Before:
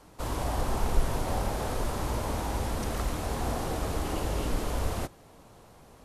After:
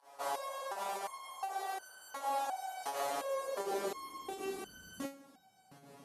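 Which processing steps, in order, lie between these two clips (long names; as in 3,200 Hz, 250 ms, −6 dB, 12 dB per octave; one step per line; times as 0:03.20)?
fake sidechain pumping 83 BPM, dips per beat 1, −20 dB, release 102 ms
soft clipping −19 dBFS, distortion −16 dB
high-pass filter sweep 690 Hz → 190 Hz, 0:02.92–0:04.81
step-sequenced resonator 2.8 Hz 140–1,500 Hz
level +8.5 dB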